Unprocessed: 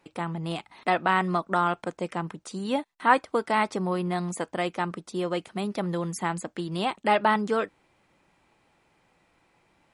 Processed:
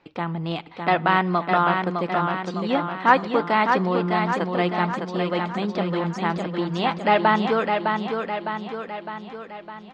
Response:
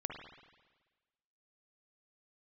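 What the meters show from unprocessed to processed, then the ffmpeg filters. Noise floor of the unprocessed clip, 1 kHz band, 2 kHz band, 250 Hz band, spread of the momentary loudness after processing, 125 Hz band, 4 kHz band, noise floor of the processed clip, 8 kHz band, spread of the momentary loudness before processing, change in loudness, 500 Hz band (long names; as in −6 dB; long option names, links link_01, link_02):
−67 dBFS, +5.5 dB, +5.5 dB, +5.5 dB, 12 LU, +5.5 dB, +5.0 dB, −42 dBFS, can't be measured, 10 LU, +4.5 dB, +5.0 dB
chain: -filter_complex "[0:a]lowpass=frequency=4900:width=0.5412,lowpass=frequency=4900:width=1.3066,aecho=1:1:608|1216|1824|2432|3040|3648|4256:0.562|0.315|0.176|0.0988|0.0553|0.031|0.0173,asplit=2[link_01][link_02];[1:a]atrim=start_sample=2205[link_03];[link_02][link_03]afir=irnorm=-1:irlink=0,volume=-18.5dB[link_04];[link_01][link_04]amix=inputs=2:normalize=0,volume=3dB"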